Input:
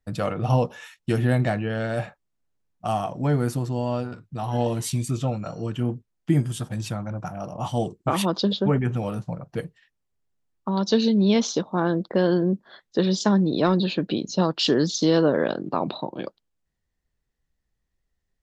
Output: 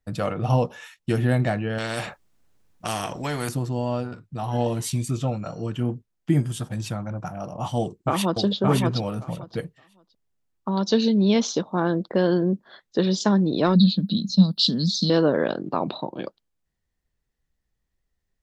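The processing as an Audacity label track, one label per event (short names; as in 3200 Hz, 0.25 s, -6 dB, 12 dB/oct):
1.780000	3.490000	spectral compressor 2:1
7.790000	8.430000	echo throw 0.57 s, feedback 15%, level -3 dB
13.750000	15.100000	EQ curve 140 Hz 0 dB, 200 Hz +11 dB, 360 Hz -19 dB, 530 Hz -14 dB, 2400 Hz -22 dB, 4000 Hz +9 dB, 6800 Hz -7 dB, 10000 Hz +14 dB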